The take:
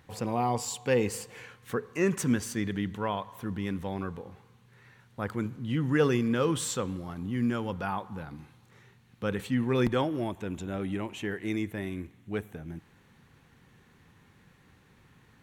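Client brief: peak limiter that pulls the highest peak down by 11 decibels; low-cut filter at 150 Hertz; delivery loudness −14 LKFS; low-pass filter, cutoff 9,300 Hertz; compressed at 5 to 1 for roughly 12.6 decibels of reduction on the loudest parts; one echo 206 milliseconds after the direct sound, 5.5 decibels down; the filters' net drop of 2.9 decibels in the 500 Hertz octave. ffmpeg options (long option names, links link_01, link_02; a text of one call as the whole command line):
ffmpeg -i in.wav -af "highpass=150,lowpass=9300,equalizer=frequency=500:width_type=o:gain=-3.5,acompressor=threshold=-37dB:ratio=5,alimiter=level_in=10dB:limit=-24dB:level=0:latency=1,volume=-10dB,aecho=1:1:206:0.531,volume=29.5dB" out.wav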